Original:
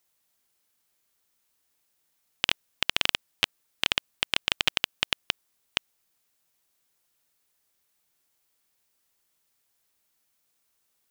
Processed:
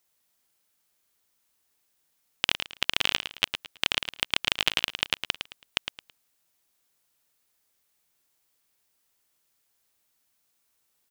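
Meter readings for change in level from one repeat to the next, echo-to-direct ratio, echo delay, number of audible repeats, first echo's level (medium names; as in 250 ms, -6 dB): -11.0 dB, -8.0 dB, 109 ms, 3, -8.5 dB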